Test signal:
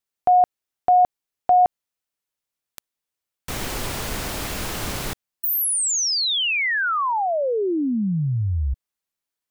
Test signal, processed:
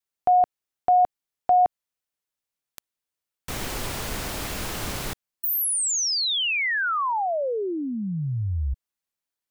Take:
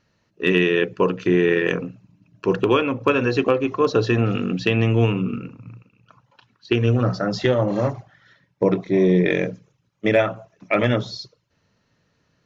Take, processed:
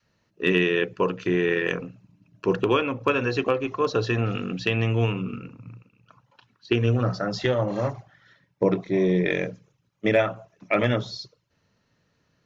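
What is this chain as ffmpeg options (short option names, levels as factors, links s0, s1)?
-af "adynamicequalizer=threshold=0.0251:dfrequency=260:dqfactor=0.73:tfrequency=260:tqfactor=0.73:attack=5:release=100:ratio=0.375:range=2.5:mode=cutabove:tftype=bell,volume=0.75"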